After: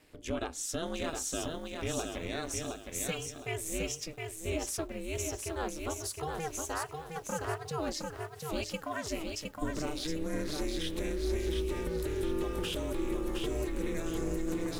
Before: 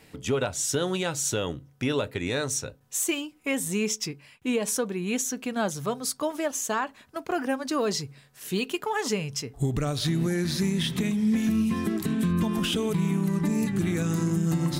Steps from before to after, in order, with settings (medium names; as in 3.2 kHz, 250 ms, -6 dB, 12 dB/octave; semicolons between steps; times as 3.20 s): ring modulator 160 Hz; bit-crushed delay 714 ms, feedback 35%, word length 9-bit, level -4 dB; trim -6 dB